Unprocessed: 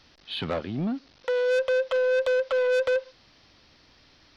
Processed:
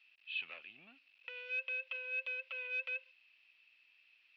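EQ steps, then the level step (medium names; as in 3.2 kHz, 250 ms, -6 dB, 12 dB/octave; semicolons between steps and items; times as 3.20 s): band-pass filter 2.6 kHz, Q 17; distance through air 76 m; +6.5 dB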